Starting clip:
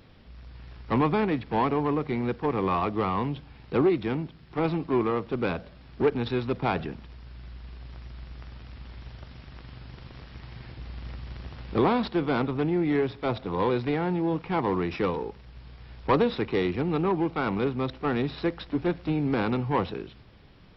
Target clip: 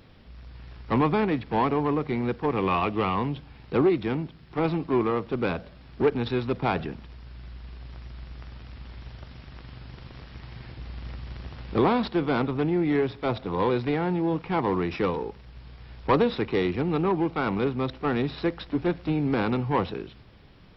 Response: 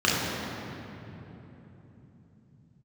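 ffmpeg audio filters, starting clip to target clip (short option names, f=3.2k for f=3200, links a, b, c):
-filter_complex "[0:a]asettb=1/sr,asplit=3[a][b][c];[a]atrim=end=2.564[d];[b]atrim=start=2.56:end=3.15,asetpts=PTS-STARTPTS,afade=t=in:d=0.004:c=qsin,afade=t=out:st=0.586:d=0.004:c=qsin,equalizer=f=2.7k:w=3.2:g=9[e];[c]atrim=start=3.146[f];[d][e]acrossfade=d=0.004:c1=hsin:c2=qsin[g];[g][f]acrossfade=d=0.004:c1=qsin:c2=hsin,volume=1dB"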